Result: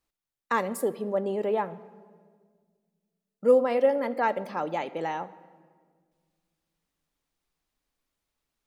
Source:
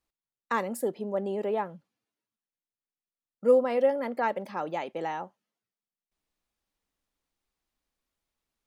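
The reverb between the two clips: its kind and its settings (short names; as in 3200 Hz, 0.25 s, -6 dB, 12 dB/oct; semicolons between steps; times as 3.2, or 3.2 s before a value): shoebox room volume 2300 m³, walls mixed, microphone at 0.38 m; gain +2 dB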